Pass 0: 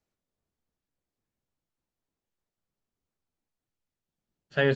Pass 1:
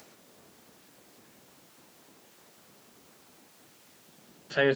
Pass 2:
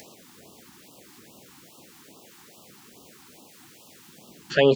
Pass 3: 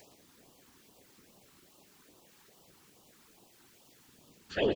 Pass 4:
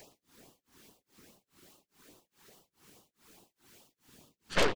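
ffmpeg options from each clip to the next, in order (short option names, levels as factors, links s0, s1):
-af "highpass=200,acompressor=mode=upward:threshold=0.0282:ratio=2.5"
-af "afftfilt=real='re*(1-between(b*sr/1024,510*pow(1900/510,0.5+0.5*sin(2*PI*2.4*pts/sr))/1.41,510*pow(1900/510,0.5+0.5*sin(2*PI*2.4*pts/sr))*1.41))':imag='im*(1-between(b*sr/1024,510*pow(1900/510,0.5+0.5*sin(2*PI*2.4*pts/sr))/1.41,510*pow(1900/510,0.5+0.5*sin(2*PI*2.4*pts/sr))*1.41))':win_size=1024:overlap=0.75,volume=2.37"
-filter_complex "[0:a]afftfilt=real='hypot(re,im)*cos(2*PI*random(0))':imag='hypot(re,im)*sin(2*PI*random(1))':win_size=512:overlap=0.75,asplit=2[s0][s1];[s1]aecho=0:1:116:0.282[s2];[s0][s2]amix=inputs=2:normalize=0,volume=0.562"
-af "aeval=exprs='0.141*(cos(1*acos(clip(val(0)/0.141,-1,1)))-cos(1*PI/2))+0.02*(cos(3*acos(clip(val(0)/0.141,-1,1)))-cos(3*PI/2))+0.0251*(cos(5*acos(clip(val(0)/0.141,-1,1)))-cos(5*PI/2))+0.0562*(cos(8*acos(clip(val(0)/0.141,-1,1)))-cos(8*PI/2))':c=same,tremolo=f=2.4:d=0.99"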